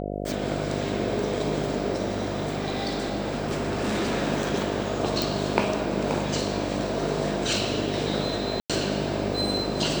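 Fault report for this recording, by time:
buzz 50 Hz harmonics 14 -31 dBFS
2.14–4.15 clipped -22.5 dBFS
5.22 pop
8.6–8.7 gap 96 ms

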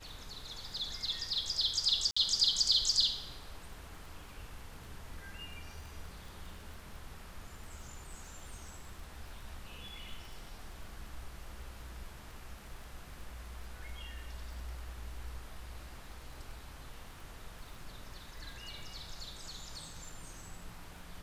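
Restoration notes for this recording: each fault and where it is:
crackle 20/s -45 dBFS
2.11–2.17 gap 55 ms

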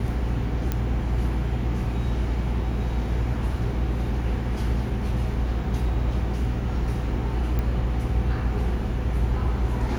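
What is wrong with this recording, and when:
0.72 pop -12 dBFS
7.59 pop -16 dBFS

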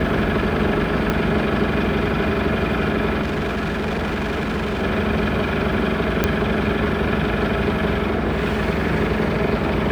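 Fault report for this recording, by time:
1.1 pop -7 dBFS
3.21–4.83 clipped -19.5 dBFS
6.24 pop -3 dBFS

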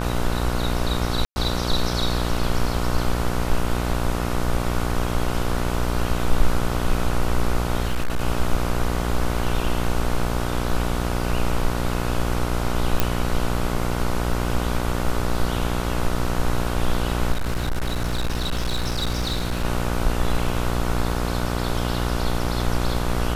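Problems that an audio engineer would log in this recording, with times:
buzz 60 Hz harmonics 25 -25 dBFS
1.25–1.36 gap 0.11 s
7.81–8.22 clipped -17.5 dBFS
13 pop
17.32–19.65 clipped -19.5 dBFS

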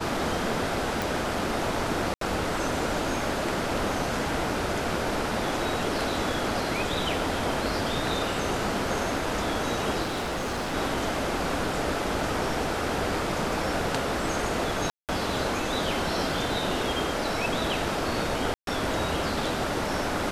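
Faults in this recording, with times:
1.02 pop
2.14–2.21 gap 73 ms
10.02–10.75 clipped -26.5 dBFS
14.9–15.09 gap 0.188 s
18.54–18.67 gap 0.132 s

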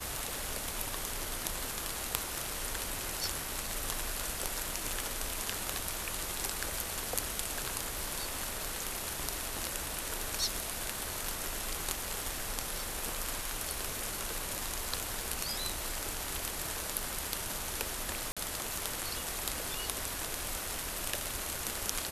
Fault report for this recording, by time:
18.32–18.37 gap 46 ms

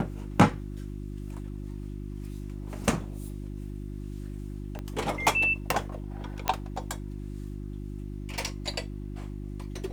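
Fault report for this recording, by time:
hum 50 Hz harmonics 7 -37 dBFS
4.79 pop -23 dBFS
6.48 pop -10 dBFS

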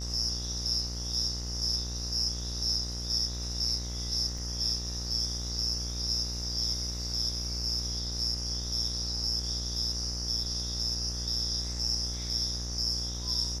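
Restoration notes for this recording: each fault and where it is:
buzz 60 Hz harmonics 34 -37 dBFS
4.38 gap 3.9 ms

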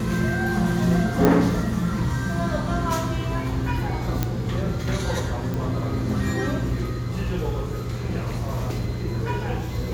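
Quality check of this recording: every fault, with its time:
1.25 pop -5 dBFS
4.23 pop -8 dBFS
5.54 pop

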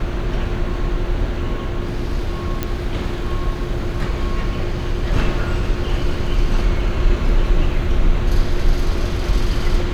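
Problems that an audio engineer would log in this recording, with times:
2.63 pop -7 dBFS

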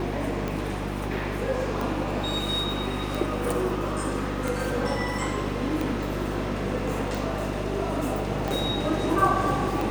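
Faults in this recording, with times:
hum 50 Hz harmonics 7 -32 dBFS
tick 45 rpm -16 dBFS

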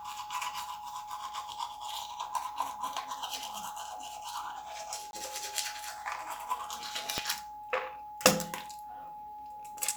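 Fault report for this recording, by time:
tone 840 Hz -42 dBFS
5.11–5.13 gap 21 ms
7.18 pop -13 dBFS

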